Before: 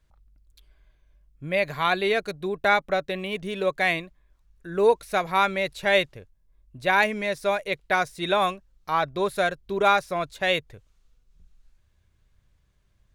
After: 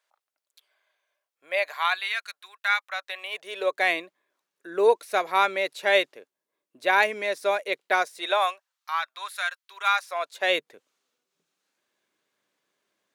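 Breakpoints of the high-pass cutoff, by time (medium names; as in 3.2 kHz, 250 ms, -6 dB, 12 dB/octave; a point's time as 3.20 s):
high-pass 24 dB/octave
1.57 s 570 Hz
2.13 s 1.2 kHz
2.78 s 1.2 kHz
3.90 s 310 Hz
7.92 s 310 Hz
8.96 s 1.1 kHz
9.91 s 1.1 kHz
10.56 s 280 Hz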